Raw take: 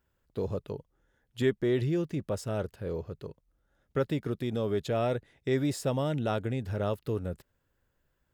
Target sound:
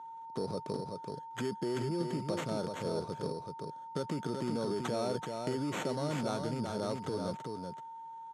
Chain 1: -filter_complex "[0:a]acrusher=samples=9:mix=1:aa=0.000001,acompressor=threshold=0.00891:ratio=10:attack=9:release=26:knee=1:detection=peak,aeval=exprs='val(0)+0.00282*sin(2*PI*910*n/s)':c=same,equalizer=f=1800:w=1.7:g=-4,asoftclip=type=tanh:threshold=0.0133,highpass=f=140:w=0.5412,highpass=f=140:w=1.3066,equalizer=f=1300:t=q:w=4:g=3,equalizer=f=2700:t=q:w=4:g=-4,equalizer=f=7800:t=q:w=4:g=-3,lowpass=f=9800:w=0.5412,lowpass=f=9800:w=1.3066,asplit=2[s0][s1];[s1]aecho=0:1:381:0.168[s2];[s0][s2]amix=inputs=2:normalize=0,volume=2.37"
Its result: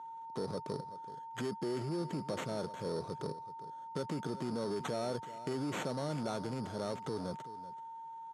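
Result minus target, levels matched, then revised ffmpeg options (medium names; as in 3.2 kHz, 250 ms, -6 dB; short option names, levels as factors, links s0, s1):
saturation: distortion +12 dB; echo-to-direct -10.5 dB
-filter_complex "[0:a]acrusher=samples=9:mix=1:aa=0.000001,acompressor=threshold=0.00891:ratio=10:attack=9:release=26:knee=1:detection=peak,aeval=exprs='val(0)+0.00282*sin(2*PI*910*n/s)':c=same,equalizer=f=1800:w=1.7:g=-4,asoftclip=type=tanh:threshold=0.0316,highpass=f=140:w=0.5412,highpass=f=140:w=1.3066,equalizer=f=1300:t=q:w=4:g=3,equalizer=f=2700:t=q:w=4:g=-4,equalizer=f=7800:t=q:w=4:g=-3,lowpass=f=9800:w=0.5412,lowpass=f=9800:w=1.3066,asplit=2[s0][s1];[s1]aecho=0:1:381:0.562[s2];[s0][s2]amix=inputs=2:normalize=0,volume=2.37"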